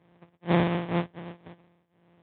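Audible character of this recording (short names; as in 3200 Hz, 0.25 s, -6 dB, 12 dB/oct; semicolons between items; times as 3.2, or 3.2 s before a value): a buzz of ramps at a fixed pitch in blocks of 256 samples; tremolo triangle 2 Hz, depth 90%; aliases and images of a low sample rate 1400 Hz, jitter 20%; Speex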